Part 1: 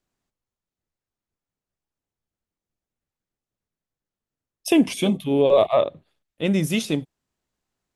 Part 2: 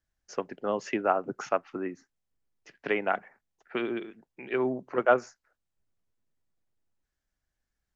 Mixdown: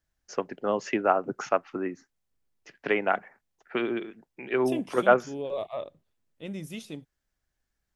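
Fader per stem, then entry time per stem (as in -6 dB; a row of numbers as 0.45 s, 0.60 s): -16.0 dB, +2.5 dB; 0.00 s, 0.00 s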